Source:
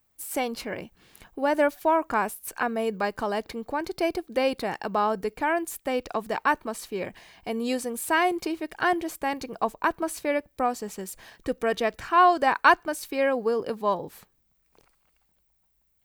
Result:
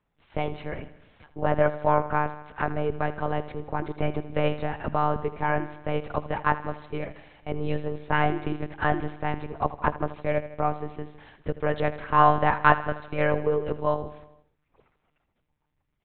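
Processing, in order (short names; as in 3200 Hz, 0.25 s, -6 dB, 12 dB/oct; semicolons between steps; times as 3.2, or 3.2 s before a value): monotone LPC vocoder at 8 kHz 150 Hz; LPF 2300 Hz 6 dB/oct; feedback echo 80 ms, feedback 59%, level -16 dB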